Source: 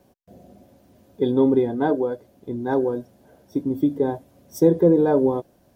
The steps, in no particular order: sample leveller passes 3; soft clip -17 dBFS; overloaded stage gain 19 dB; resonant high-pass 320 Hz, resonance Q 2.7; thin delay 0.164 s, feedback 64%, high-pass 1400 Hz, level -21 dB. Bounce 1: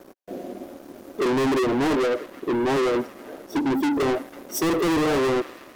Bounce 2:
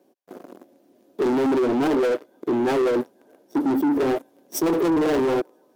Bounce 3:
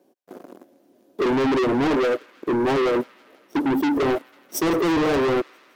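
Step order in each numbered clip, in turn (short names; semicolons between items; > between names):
resonant high-pass > overloaded stage > thin delay > sample leveller > soft clip; thin delay > sample leveller > overloaded stage > resonant high-pass > soft clip; sample leveller > resonant high-pass > soft clip > overloaded stage > thin delay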